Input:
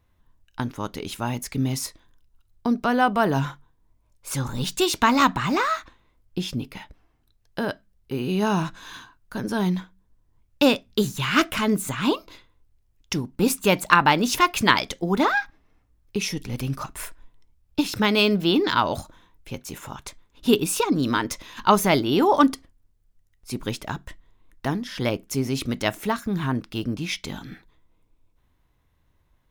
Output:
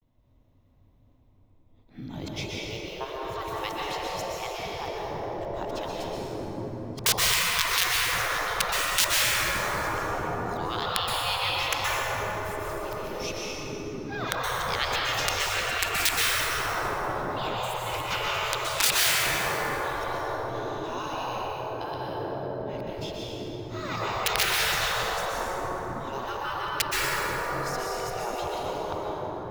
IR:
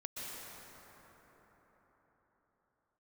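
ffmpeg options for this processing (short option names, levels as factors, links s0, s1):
-filter_complex "[0:a]areverse,equalizer=f=100:t=o:w=0.67:g=11,equalizer=f=250:t=o:w=0.67:g=11,equalizer=f=630:t=o:w=0.67:g=7,equalizer=f=1600:t=o:w=0.67:g=-9,equalizer=f=10000:t=o:w=0.67:g=-11,aeval=exprs='(mod(1.5*val(0)+1,2)-1)/1.5':c=same[s0];[1:a]atrim=start_sample=2205[s1];[s0][s1]afir=irnorm=-1:irlink=0,afftfilt=real='re*lt(hypot(re,im),0.224)':imag='im*lt(hypot(re,im),0.224)':win_size=1024:overlap=0.75"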